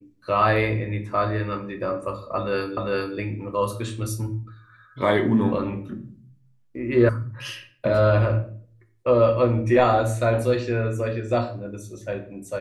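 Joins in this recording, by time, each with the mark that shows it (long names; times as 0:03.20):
0:02.77: the same again, the last 0.4 s
0:07.09: cut off before it has died away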